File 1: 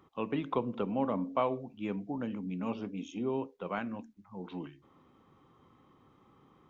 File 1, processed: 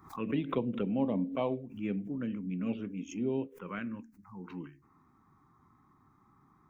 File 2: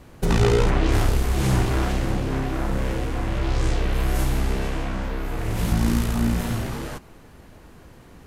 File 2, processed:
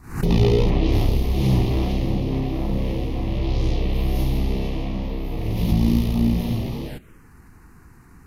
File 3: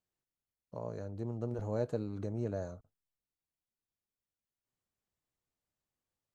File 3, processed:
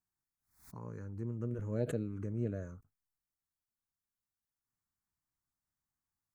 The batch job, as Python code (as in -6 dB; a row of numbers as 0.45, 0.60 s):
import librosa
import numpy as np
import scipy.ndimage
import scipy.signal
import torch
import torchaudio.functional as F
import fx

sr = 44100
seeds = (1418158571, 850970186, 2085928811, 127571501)

y = fx.dynamic_eq(x, sr, hz=190.0, q=0.8, threshold_db=-37.0, ratio=4.0, max_db=4)
y = fx.env_phaser(y, sr, low_hz=510.0, high_hz=1500.0, full_db=-24.0)
y = fx.pre_swell(y, sr, db_per_s=130.0)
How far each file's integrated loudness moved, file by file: +0.5, +1.5, -0.5 LU